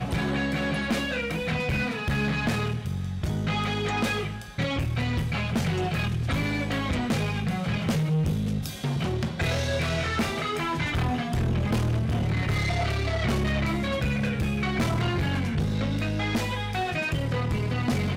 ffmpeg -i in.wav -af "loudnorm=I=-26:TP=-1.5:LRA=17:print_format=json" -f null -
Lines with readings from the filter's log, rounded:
"input_i" : "-27.1",
"input_tp" : "-18.6",
"input_lra" : "1.3",
"input_thresh" : "-37.1",